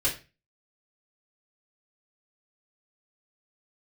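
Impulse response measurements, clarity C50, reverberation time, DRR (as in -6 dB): 9.5 dB, 0.30 s, -8.5 dB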